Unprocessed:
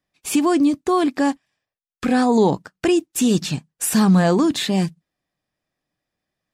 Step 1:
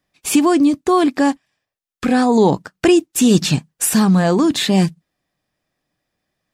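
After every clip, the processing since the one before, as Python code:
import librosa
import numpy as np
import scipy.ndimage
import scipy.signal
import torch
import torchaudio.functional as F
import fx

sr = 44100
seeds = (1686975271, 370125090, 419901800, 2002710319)

y = fx.rider(x, sr, range_db=10, speed_s=0.5)
y = y * librosa.db_to_amplitude(4.0)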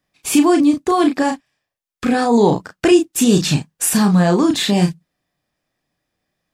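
y = fx.doubler(x, sr, ms=34.0, db=-5.0)
y = y * librosa.db_to_amplitude(-1.0)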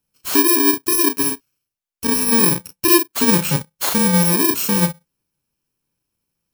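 y = fx.bit_reversed(x, sr, seeds[0], block=64)
y = y * librosa.db_to_amplitude(-2.0)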